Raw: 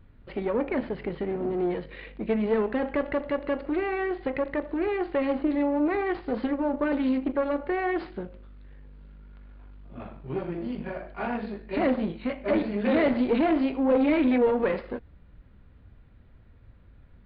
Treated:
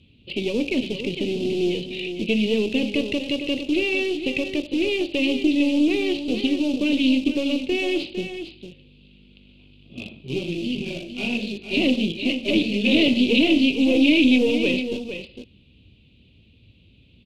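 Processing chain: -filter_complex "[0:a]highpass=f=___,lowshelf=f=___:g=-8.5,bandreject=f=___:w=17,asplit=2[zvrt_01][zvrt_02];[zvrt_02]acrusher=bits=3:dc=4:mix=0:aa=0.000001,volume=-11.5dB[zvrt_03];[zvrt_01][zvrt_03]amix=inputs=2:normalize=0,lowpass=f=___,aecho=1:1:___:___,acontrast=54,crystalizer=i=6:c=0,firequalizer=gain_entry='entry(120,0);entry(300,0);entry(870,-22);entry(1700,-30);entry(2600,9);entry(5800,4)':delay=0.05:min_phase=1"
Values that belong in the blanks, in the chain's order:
65, 110, 1.3k, 2.8k, 455, 0.335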